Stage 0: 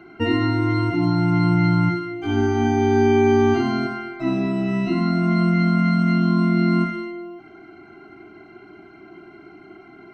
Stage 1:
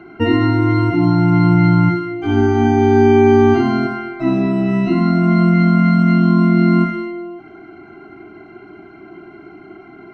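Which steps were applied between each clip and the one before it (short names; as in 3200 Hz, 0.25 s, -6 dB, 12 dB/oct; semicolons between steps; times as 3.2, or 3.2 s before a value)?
high shelf 3200 Hz -8.5 dB; gain +6 dB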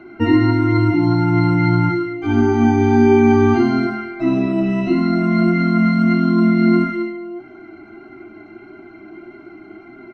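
comb 3.4 ms, depth 35%; flange 1.6 Hz, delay 7.7 ms, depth 2.1 ms, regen +56%; gain +2.5 dB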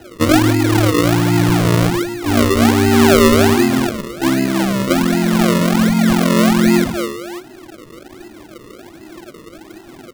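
decimation with a swept rate 38×, swing 100% 1.3 Hz; gain +1.5 dB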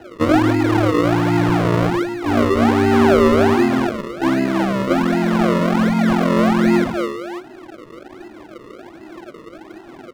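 overdrive pedal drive 10 dB, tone 1000 Hz, clips at -1.5 dBFS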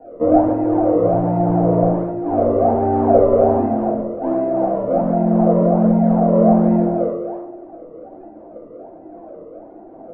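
synth low-pass 660 Hz, resonance Q 4.9; reverb RT60 0.80 s, pre-delay 4 ms, DRR -4.5 dB; gain -11.5 dB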